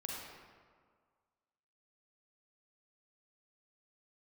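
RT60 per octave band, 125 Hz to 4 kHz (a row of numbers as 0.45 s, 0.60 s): 1.7 s, 1.7 s, 1.8 s, 1.8 s, 1.4 s, 1.0 s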